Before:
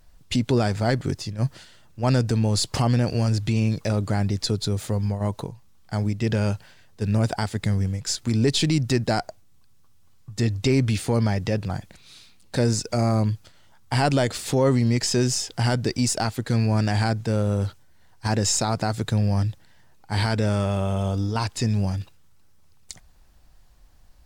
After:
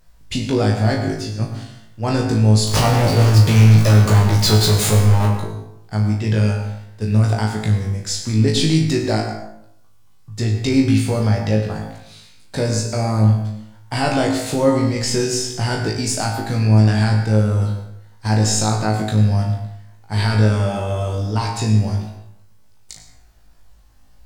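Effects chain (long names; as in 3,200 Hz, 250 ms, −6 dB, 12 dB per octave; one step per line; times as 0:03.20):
0:02.67–0:05.26: power curve on the samples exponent 0.35
flutter between parallel walls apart 3.2 metres, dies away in 0.36 s
dense smooth reverb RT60 0.77 s, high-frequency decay 0.55×, pre-delay 85 ms, DRR 7 dB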